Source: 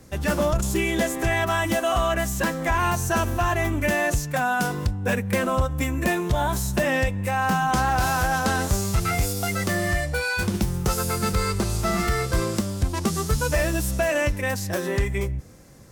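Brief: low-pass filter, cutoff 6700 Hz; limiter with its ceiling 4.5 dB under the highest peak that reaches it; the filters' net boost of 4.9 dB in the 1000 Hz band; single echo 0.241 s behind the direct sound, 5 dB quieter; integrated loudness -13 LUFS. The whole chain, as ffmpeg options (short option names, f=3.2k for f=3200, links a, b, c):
-af "lowpass=6.7k,equalizer=f=1k:t=o:g=6.5,alimiter=limit=-13dB:level=0:latency=1,aecho=1:1:241:0.562,volume=9dB"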